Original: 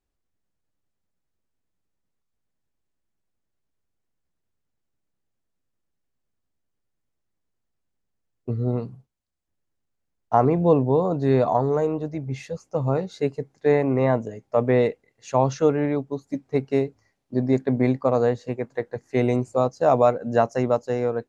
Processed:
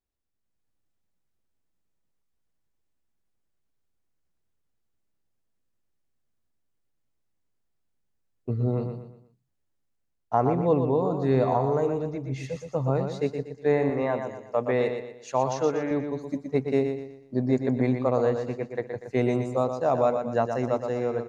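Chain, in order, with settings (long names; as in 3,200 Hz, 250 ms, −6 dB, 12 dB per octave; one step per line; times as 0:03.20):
0:13.90–0:15.91: low-shelf EQ 330 Hz −9.5 dB
on a send: repeating echo 120 ms, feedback 38%, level −7 dB
on the sum: automatic gain control gain up to 6.5 dB
level −8 dB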